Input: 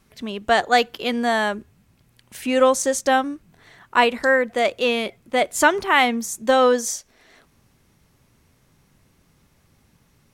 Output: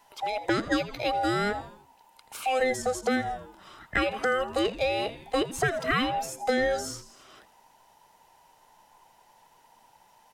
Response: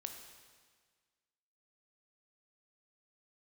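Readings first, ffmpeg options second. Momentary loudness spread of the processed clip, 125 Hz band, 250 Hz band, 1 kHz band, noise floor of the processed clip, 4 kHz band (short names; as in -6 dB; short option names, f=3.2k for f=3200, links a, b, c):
10 LU, n/a, -6.0 dB, -8.5 dB, -61 dBFS, -7.5 dB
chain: -filter_complex "[0:a]afftfilt=real='real(if(between(b,1,1008),(2*floor((b-1)/48)+1)*48-b,b),0)':imag='imag(if(between(b,1,1008),(2*floor((b-1)/48)+1)*48-b,b),0)*if(between(b,1,1008),-1,1)':win_size=2048:overlap=0.75,asplit=5[a][b][c][d][e];[b]adelay=82,afreqshift=-140,volume=-17dB[f];[c]adelay=164,afreqshift=-280,volume=-23.9dB[g];[d]adelay=246,afreqshift=-420,volume=-30.9dB[h];[e]adelay=328,afreqshift=-560,volume=-37.8dB[i];[a][f][g][h][i]amix=inputs=5:normalize=0,acrossover=split=160|2600[j][k][l];[j]acompressor=threshold=-41dB:ratio=4[m];[k]acompressor=threshold=-25dB:ratio=4[n];[l]acompressor=threshold=-39dB:ratio=4[o];[m][n][o]amix=inputs=3:normalize=0"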